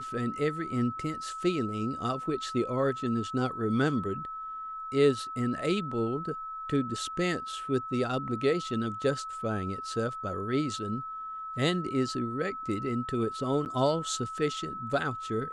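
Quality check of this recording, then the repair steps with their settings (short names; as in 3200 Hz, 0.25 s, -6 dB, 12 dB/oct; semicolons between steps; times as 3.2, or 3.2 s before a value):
tone 1300 Hz -36 dBFS
13.65–13.66 gap 9.4 ms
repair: notch 1300 Hz, Q 30; interpolate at 13.65, 9.4 ms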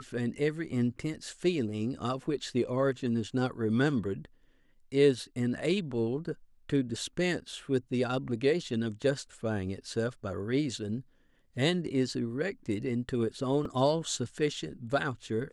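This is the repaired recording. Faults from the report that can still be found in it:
none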